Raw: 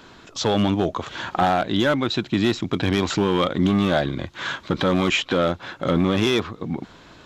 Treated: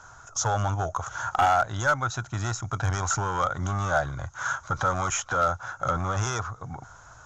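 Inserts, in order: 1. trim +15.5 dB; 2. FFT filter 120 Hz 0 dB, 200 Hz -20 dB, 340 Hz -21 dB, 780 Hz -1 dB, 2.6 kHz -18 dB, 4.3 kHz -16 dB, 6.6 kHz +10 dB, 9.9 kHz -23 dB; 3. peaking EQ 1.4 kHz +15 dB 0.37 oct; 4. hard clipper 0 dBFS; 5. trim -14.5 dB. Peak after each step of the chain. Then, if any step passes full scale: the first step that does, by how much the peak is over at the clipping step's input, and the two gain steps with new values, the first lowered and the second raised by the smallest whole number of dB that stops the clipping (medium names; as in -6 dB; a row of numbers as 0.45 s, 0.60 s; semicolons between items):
+6.0 dBFS, +2.0 dBFS, +5.5 dBFS, 0.0 dBFS, -14.5 dBFS; step 1, 5.5 dB; step 1 +9.5 dB, step 5 -8.5 dB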